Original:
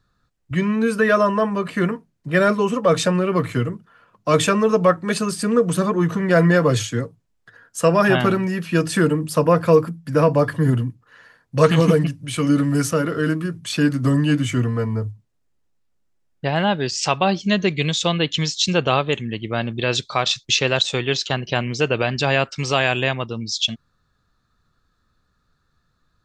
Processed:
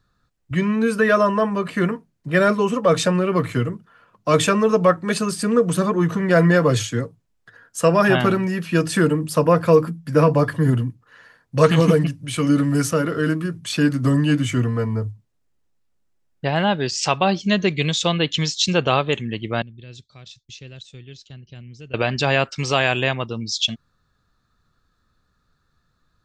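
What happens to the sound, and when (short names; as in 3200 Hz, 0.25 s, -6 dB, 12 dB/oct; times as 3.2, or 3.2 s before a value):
9.8–10.44 doubler 13 ms -9 dB
19.62–21.94 passive tone stack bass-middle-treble 10-0-1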